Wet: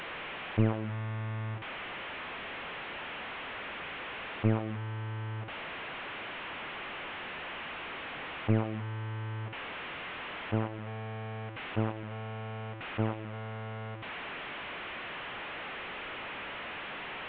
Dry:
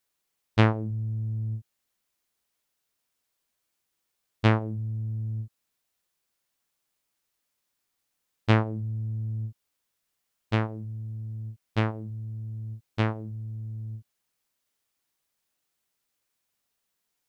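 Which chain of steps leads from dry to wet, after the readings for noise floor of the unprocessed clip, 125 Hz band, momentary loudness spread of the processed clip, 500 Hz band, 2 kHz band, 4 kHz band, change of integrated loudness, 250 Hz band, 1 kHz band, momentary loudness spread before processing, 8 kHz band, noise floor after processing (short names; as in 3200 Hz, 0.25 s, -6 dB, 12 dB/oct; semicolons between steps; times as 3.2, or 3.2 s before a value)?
-80 dBFS, -6.0 dB, 10 LU, -2.5 dB, +2.5 dB, +2.5 dB, -7.0 dB, -3.5 dB, -1.0 dB, 13 LU, n/a, -41 dBFS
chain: delta modulation 16 kbps, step -33 dBFS; low shelf 170 Hz -8.5 dB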